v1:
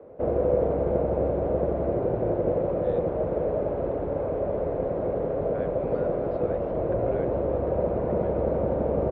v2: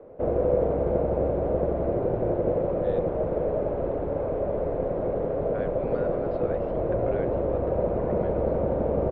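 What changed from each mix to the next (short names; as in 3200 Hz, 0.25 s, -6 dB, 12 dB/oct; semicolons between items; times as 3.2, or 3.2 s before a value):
speech +3.5 dB; master: remove HPF 41 Hz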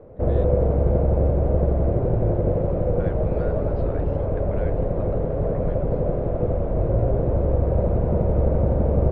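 speech: entry -2.55 s; master: remove three-band isolator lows -13 dB, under 220 Hz, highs -21 dB, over 5900 Hz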